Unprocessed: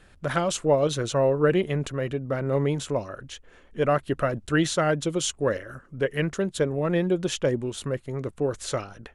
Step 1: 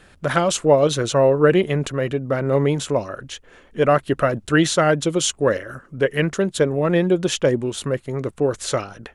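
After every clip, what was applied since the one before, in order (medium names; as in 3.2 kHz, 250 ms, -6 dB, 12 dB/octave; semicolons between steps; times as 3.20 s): bass shelf 79 Hz -7.5 dB; trim +6.5 dB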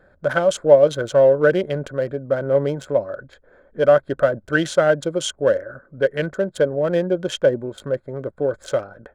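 local Wiener filter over 15 samples; small resonant body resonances 570/1500/3200 Hz, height 12 dB, ringing for 25 ms; trim -6 dB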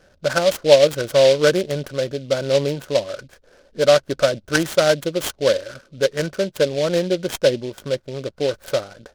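delay time shaken by noise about 3.4 kHz, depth 0.061 ms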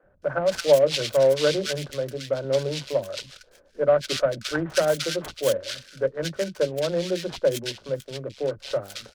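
three bands offset in time mids, lows, highs 30/220 ms, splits 270/1700 Hz; trim -4.5 dB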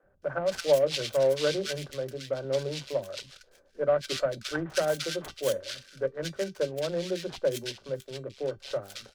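feedback comb 390 Hz, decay 0.17 s, harmonics all, mix 50%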